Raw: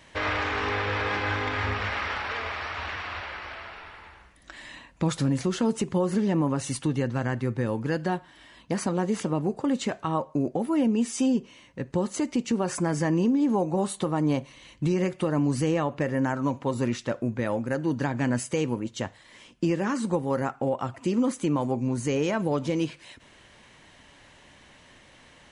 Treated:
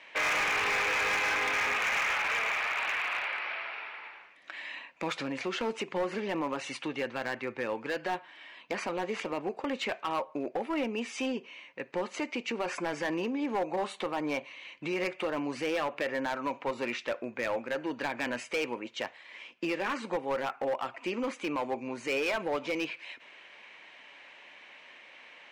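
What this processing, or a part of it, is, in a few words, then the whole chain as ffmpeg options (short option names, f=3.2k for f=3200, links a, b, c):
megaphone: -af "highpass=480,lowpass=3.8k,equalizer=f=2.4k:t=o:w=0.45:g=10,asoftclip=type=hard:threshold=-25.5dB"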